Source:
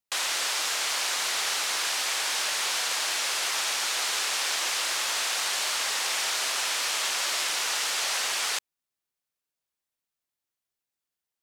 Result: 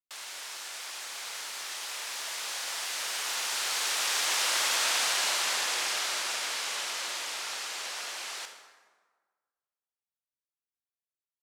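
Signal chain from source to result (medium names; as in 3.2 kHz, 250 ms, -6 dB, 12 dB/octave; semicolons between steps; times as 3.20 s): Doppler pass-by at 4.75 s, 29 m/s, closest 28 m; on a send: reverberation RT60 1.5 s, pre-delay 22 ms, DRR 5 dB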